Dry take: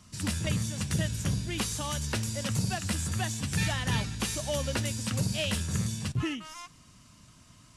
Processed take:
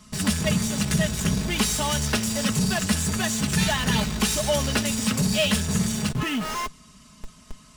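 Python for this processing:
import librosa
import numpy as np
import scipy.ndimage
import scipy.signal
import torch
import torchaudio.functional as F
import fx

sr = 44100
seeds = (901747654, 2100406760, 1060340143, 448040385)

p1 = fx.schmitt(x, sr, flips_db=-44.0)
p2 = x + (p1 * librosa.db_to_amplitude(-6.0))
p3 = p2 + 0.7 * np.pad(p2, (int(4.7 * sr / 1000.0), 0))[:len(p2)]
y = p3 * librosa.db_to_amplitude(4.0)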